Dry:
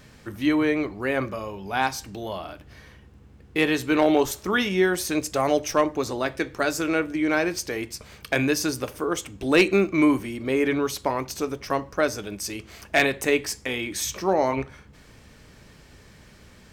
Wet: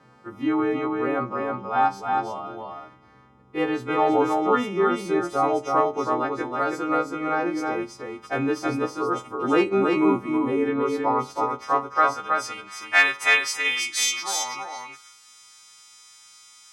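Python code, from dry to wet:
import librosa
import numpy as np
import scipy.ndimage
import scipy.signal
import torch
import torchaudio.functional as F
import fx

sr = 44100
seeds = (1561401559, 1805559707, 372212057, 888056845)

y = fx.freq_snap(x, sr, grid_st=2)
y = fx.peak_eq(y, sr, hz=800.0, db=10.5, octaves=0.43)
y = fx.filter_sweep_bandpass(y, sr, from_hz=460.0, to_hz=6400.0, start_s=11.0, end_s=14.91, q=0.96)
y = fx.graphic_eq_31(y, sr, hz=(125, 250, 630, 1250), db=(9, 5, -8, 12))
y = y + 10.0 ** (-3.5 / 20.0) * np.pad(y, (int(323 * sr / 1000.0), 0))[:len(y)]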